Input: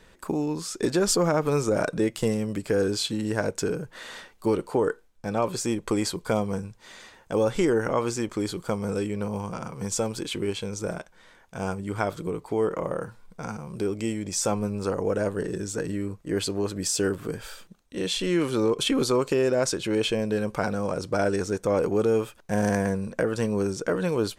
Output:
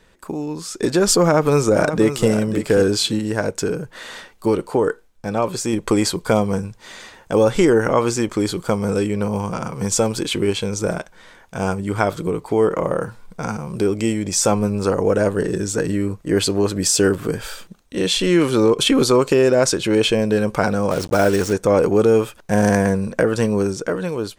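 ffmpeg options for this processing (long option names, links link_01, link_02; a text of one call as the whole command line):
ffmpeg -i in.wav -filter_complex "[0:a]asplit=2[link_01][link_02];[link_02]afade=type=in:start_time=1.22:duration=0.01,afade=type=out:start_time=2.28:duration=0.01,aecho=0:1:540|1080:0.298538|0.0298538[link_03];[link_01][link_03]amix=inputs=2:normalize=0,asplit=3[link_04][link_05][link_06];[link_04]afade=type=out:start_time=20.9:duration=0.02[link_07];[link_05]acrusher=bits=5:mix=0:aa=0.5,afade=type=in:start_time=20.9:duration=0.02,afade=type=out:start_time=21.52:duration=0.02[link_08];[link_06]afade=type=in:start_time=21.52:duration=0.02[link_09];[link_07][link_08][link_09]amix=inputs=3:normalize=0,asplit=3[link_10][link_11][link_12];[link_10]atrim=end=3.192[link_13];[link_11]atrim=start=3.188:end=5.732,asetpts=PTS-STARTPTS,volume=-3.5dB[link_14];[link_12]atrim=start=5.728[link_15];[link_13][link_14]acrossfade=duration=0.004:curve1=hsin:curve2=hsin[link_16];[link_16][link_15]acrossfade=duration=0.004:curve1=hsin:curve2=hsin,dynaudnorm=framelen=150:gausssize=11:maxgain=9.5dB" out.wav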